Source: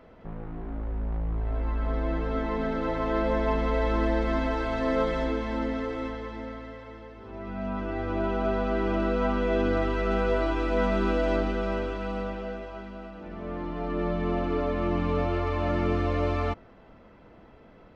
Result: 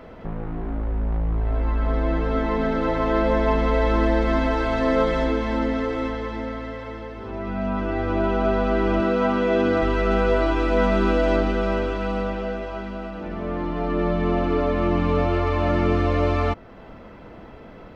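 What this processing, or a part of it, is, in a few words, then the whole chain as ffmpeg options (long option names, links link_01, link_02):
parallel compression: -filter_complex "[0:a]asettb=1/sr,asplit=3[link_01][link_02][link_03];[link_01]atrim=end=9.004[link_04];[link_02]atrim=start=9:end=9.82,asetpts=PTS-STARTPTS,afade=type=in:duration=0.004:curve=qsin,afade=type=out:start_time=0.816:duration=0.004:curve=qsin,highpass=100[link_05];[link_03]atrim=start=9.816[link_06];[link_04][link_05]acrossfade=duration=0.004:curve1=hsin:curve2=qsin[link_07];[link_07][link_06]acrossfade=duration=0.004:curve1=qsin:curve2=hsin,asplit=2[link_08][link_09];[link_09]acompressor=threshold=-40dB:ratio=6,volume=-0.5dB[link_10];[link_08][link_10]amix=inputs=2:normalize=0,volume=4.5dB"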